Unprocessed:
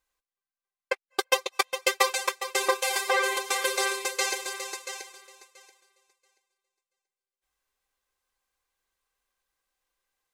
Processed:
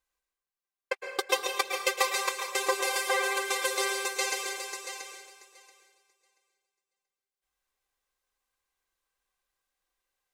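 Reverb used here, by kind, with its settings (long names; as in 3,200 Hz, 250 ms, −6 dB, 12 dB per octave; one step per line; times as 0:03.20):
dense smooth reverb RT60 0.85 s, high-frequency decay 0.95×, pre-delay 100 ms, DRR 3.5 dB
level −3.5 dB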